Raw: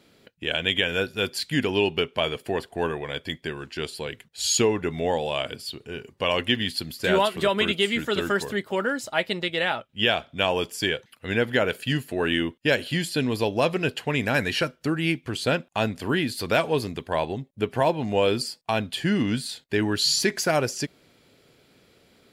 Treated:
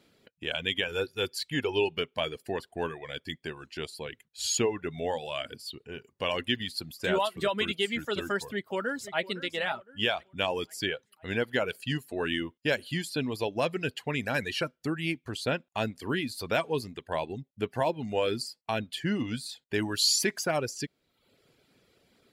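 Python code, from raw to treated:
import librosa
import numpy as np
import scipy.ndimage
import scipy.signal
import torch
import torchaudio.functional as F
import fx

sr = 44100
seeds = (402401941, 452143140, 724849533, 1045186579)

y = fx.comb(x, sr, ms=2.3, depth=0.45, at=(0.88, 1.91))
y = fx.echo_throw(y, sr, start_s=8.44, length_s=0.77, ms=510, feedback_pct=50, wet_db=-12.5)
y = fx.high_shelf(y, sr, hz=4600.0, db=8.0, at=(19.74, 20.39))
y = fx.dereverb_blind(y, sr, rt60_s=0.75)
y = F.gain(torch.from_numpy(y), -5.5).numpy()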